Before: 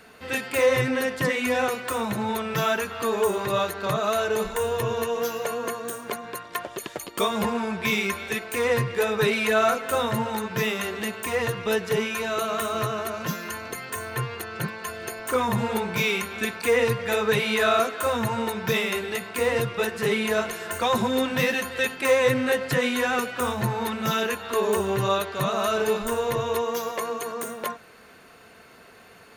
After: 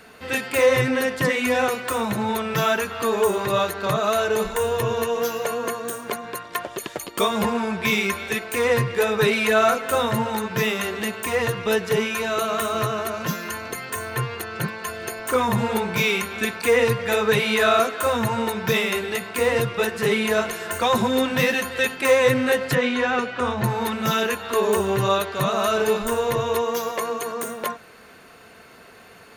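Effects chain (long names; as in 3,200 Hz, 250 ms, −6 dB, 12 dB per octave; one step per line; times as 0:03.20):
0:22.75–0:23.64: high-frequency loss of the air 120 metres
level +3 dB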